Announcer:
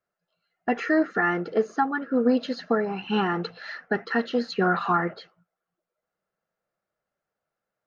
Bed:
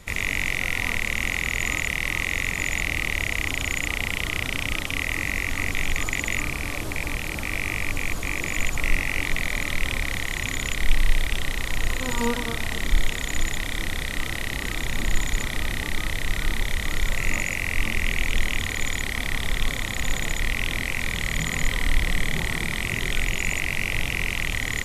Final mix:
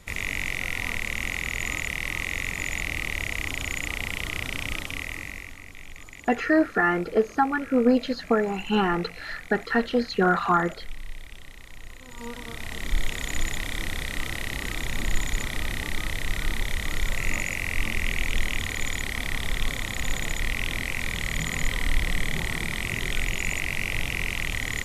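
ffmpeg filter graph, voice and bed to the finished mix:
ffmpeg -i stem1.wav -i stem2.wav -filter_complex "[0:a]adelay=5600,volume=1.5dB[link_01];[1:a]volume=11.5dB,afade=type=out:start_time=4.74:duration=0.86:silence=0.199526,afade=type=in:start_time=12.09:duration=1.17:silence=0.16788[link_02];[link_01][link_02]amix=inputs=2:normalize=0" out.wav

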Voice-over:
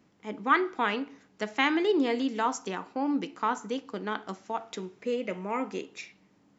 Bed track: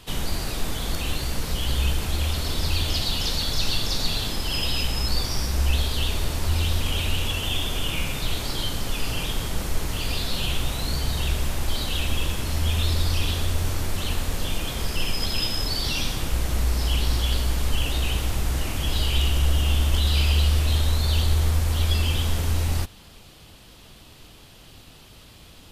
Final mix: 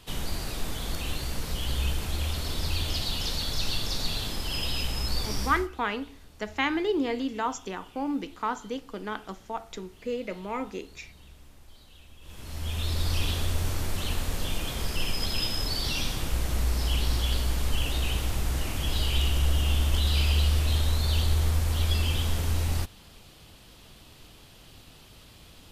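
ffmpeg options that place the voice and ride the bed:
ffmpeg -i stem1.wav -i stem2.wav -filter_complex "[0:a]adelay=5000,volume=-1.5dB[link_01];[1:a]volume=18.5dB,afade=type=out:start_time=5.45:duration=0.23:silence=0.0794328,afade=type=in:start_time=12.21:duration=0.96:silence=0.0668344[link_02];[link_01][link_02]amix=inputs=2:normalize=0" out.wav

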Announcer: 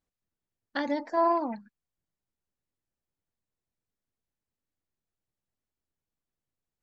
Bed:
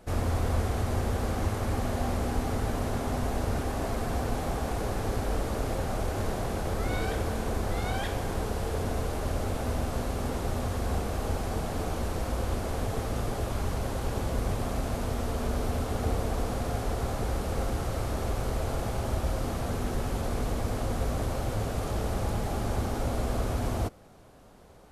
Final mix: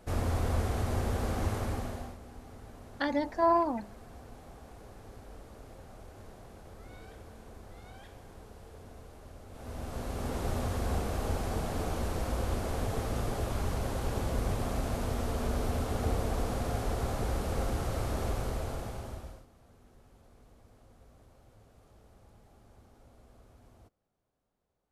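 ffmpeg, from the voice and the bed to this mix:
ffmpeg -i stem1.wav -i stem2.wav -filter_complex "[0:a]adelay=2250,volume=-0.5dB[link_01];[1:a]volume=15dB,afade=type=out:start_time=1.56:duration=0.61:silence=0.141254,afade=type=in:start_time=9.49:duration=0.99:silence=0.133352,afade=type=out:start_time=18.26:duration=1.2:silence=0.0446684[link_02];[link_01][link_02]amix=inputs=2:normalize=0" out.wav

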